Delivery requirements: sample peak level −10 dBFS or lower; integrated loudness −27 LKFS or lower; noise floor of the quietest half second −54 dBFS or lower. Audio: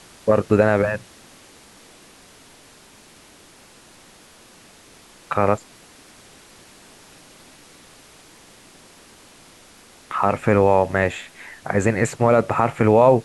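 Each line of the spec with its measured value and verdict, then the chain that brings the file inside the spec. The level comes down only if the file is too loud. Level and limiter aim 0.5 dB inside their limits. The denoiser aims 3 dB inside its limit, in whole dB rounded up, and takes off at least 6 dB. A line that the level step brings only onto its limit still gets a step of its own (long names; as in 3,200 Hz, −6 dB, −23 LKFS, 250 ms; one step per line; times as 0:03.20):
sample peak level −3.5 dBFS: out of spec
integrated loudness −19.5 LKFS: out of spec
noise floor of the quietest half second −49 dBFS: out of spec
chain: level −8 dB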